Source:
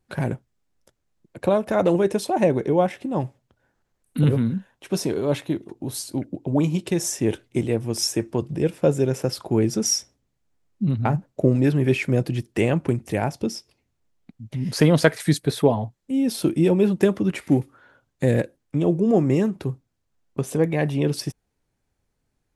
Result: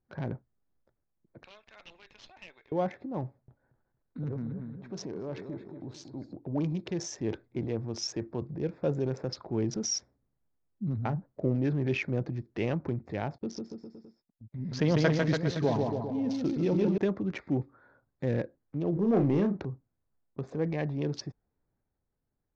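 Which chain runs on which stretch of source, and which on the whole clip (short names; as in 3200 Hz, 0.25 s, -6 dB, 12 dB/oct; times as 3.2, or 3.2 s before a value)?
1.43–2.72 resonant high-pass 2900 Hz, resonance Q 6.5 + tube stage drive 28 dB, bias 0.45
3.25–6.36 feedback echo 0.231 s, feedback 27%, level -11.5 dB + compressor 2:1, threshold -26 dBFS
13.38–16.98 LPF 10000 Hz + gate -40 dBFS, range -28 dB + bouncing-ball echo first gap 0.15 s, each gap 0.9×, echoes 5
18.93–19.65 high shelf 6200 Hz -10.5 dB + sample leveller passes 1 + doubler 35 ms -7 dB
whole clip: Wiener smoothing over 15 samples; transient shaper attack -2 dB, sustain +5 dB; elliptic low-pass 6100 Hz, stop band 50 dB; gain -8.5 dB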